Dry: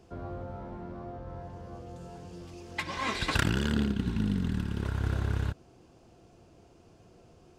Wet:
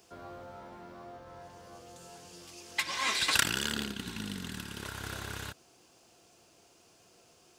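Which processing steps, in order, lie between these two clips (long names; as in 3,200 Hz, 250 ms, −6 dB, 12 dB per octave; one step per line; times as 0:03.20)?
spectral tilt +4 dB per octave
level −1.5 dB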